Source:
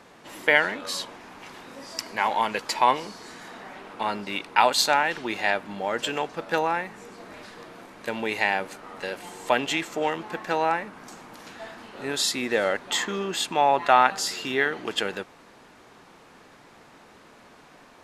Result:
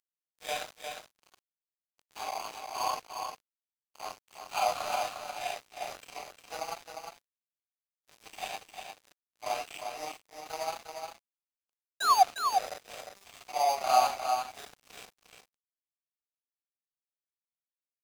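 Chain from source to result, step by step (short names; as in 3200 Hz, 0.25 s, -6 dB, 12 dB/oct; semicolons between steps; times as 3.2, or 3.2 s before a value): phase scrambler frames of 0.2 s; upward compressor, threshold -33 dBFS; bell 6900 Hz -15 dB 0.58 oct; painted sound fall, 12–12.23, 710–1700 Hz -13 dBFS; high shelf 2300 Hz +4.5 dB; careless resampling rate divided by 8×, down none, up zero stuff; vowel filter a; crossover distortion -36 dBFS; echo 0.354 s -6 dB; gate with hold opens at -53 dBFS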